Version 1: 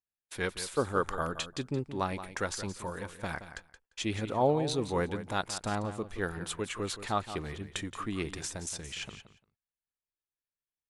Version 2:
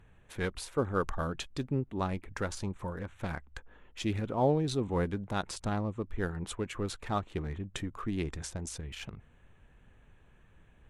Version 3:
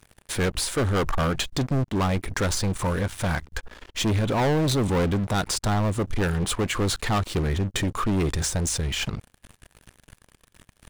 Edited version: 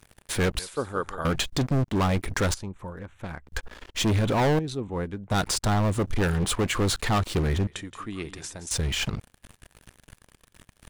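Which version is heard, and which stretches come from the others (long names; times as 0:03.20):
3
0:00.59–0:01.25: punch in from 1
0:02.54–0:03.47: punch in from 2
0:04.59–0:05.31: punch in from 2
0:07.67–0:08.71: punch in from 1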